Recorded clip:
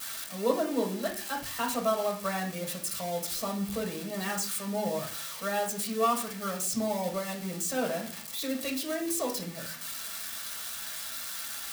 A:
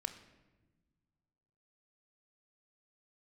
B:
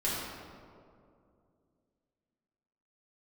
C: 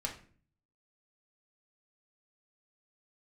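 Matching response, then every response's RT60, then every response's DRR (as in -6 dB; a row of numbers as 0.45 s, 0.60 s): C; no single decay rate, 2.4 s, 0.45 s; 8.5 dB, -8.0 dB, -1.5 dB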